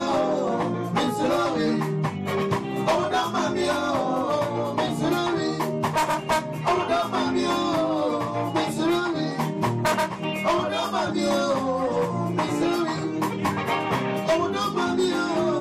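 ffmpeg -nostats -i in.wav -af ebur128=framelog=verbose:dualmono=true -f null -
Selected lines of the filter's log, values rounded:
Integrated loudness:
  I:         -21.4 LUFS
  Threshold: -31.4 LUFS
Loudness range:
  LRA:         0.6 LU
  Threshold: -41.4 LUFS
  LRA low:   -21.7 LUFS
  LRA high:  -21.1 LUFS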